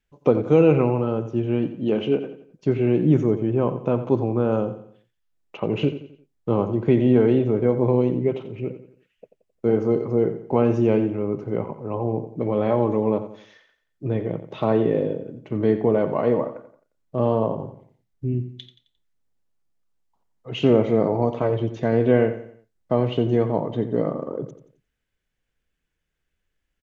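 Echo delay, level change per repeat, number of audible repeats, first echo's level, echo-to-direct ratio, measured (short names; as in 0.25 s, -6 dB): 88 ms, -8.0 dB, 3, -12.0 dB, -11.5 dB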